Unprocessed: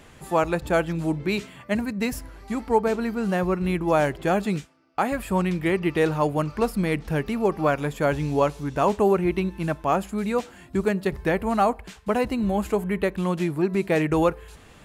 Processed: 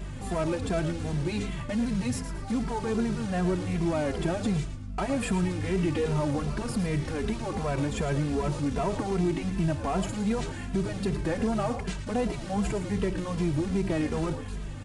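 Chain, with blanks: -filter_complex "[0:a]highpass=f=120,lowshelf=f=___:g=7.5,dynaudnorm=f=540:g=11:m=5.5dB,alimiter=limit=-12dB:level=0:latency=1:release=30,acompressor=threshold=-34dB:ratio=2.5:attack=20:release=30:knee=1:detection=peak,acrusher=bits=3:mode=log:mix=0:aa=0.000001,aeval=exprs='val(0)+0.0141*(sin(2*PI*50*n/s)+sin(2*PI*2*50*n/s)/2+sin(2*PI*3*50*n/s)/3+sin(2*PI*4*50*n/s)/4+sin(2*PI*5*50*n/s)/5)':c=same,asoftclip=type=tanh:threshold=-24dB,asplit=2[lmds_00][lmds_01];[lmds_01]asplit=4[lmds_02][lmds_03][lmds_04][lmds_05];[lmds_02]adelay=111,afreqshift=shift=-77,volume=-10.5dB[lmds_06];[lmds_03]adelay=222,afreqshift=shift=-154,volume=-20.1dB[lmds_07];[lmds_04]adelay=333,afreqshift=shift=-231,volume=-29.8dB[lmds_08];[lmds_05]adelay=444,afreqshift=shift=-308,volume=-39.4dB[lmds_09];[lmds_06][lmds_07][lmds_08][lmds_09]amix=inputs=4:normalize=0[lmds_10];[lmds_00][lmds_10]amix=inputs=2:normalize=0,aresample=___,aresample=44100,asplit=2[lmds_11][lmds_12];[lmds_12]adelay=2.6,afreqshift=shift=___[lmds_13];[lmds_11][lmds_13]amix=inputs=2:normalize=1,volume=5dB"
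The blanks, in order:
390, 22050, -2.6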